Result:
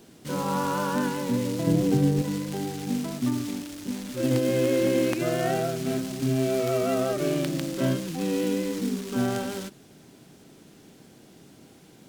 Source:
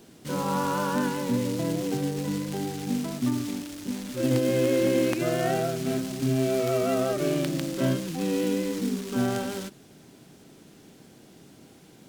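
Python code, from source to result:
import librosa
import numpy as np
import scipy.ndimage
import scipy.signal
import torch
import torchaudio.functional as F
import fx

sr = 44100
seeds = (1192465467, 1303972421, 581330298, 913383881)

y = fx.low_shelf(x, sr, hz=330.0, db=11.0, at=(1.67, 2.22))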